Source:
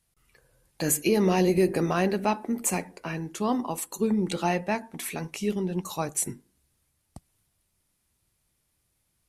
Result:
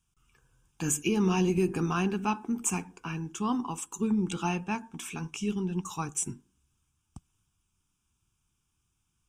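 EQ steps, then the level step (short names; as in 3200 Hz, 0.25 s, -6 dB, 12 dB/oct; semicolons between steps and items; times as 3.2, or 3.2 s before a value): fixed phaser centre 2900 Hz, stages 8; 0.0 dB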